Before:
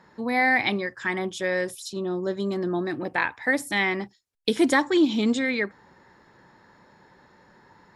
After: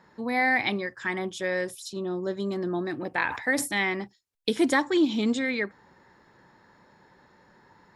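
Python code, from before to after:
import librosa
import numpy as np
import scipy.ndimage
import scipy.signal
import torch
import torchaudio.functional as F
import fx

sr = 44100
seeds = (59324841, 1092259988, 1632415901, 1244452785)

y = fx.sustainer(x, sr, db_per_s=78.0, at=(3.14, 3.66), fade=0.02)
y = F.gain(torch.from_numpy(y), -2.5).numpy()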